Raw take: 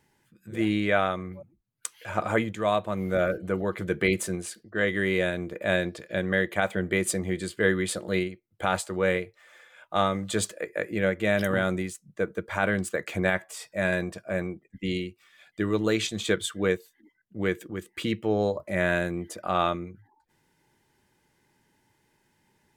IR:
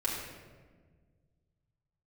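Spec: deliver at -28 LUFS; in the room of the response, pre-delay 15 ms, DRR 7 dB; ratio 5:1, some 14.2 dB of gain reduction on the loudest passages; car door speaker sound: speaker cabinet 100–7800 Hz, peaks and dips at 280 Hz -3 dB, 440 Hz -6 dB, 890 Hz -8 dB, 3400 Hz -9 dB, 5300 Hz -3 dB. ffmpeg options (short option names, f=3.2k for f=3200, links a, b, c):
-filter_complex "[0:a]acompressor=threshold=-35dB:ratio=5,asplit=2[a][b];[1:a]atrim=start_sample=2205,adelay=15[c];[b][c]afir=irnorm=-1:irlink=0,volume=-13dB[d];[a][d]amix=inputs=2:normalize=0,highpass=100,equalizer=f=280:t=q:w=4:g=-3,equalizer=f=440:t=q:w=4:g=-6,equalizer=f=890:t=q:w=4:g=-8,equalizer=f=3.4k:t=q:w=4:g=-9,equalizer=f=5.3k:t=q:w=4:g=-3,lowpass=f=7.8k:w=0.5412,lowpass=f=7.8k:w=1.3066,volume=12.5dB"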